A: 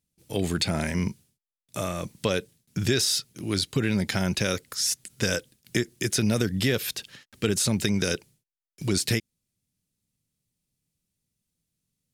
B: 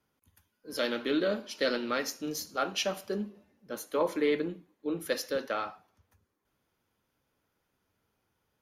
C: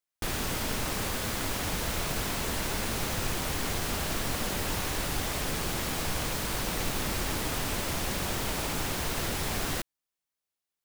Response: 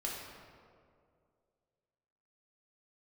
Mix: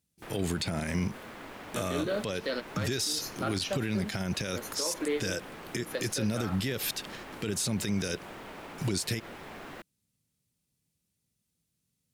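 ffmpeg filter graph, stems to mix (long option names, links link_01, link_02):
-filter_complex "[0:a]highpass=50,volume=1dB,asplit=2[link_01][link_02];[1:a]adelay=850,volume=-1dB[link_03];[2:a]acrossover=split=170 2900:gain=0.2 1 0.158[link_04][link_05][link_06];[link_04][link_05][link_06]amix=inputs=3:normalize=0,volume=-9dB[link_07];[link_02]apad=whole_len=417232[link_08];[link_03][link_08]sidechaingate=range=-33dB:threshold=-50dB:ratio=16:detection=peak[link_09];[link_01][link_09][link_07]amix=inputs=3:normalize=0,alimiter=limit=-21dB:level=0:latency=1:release=93"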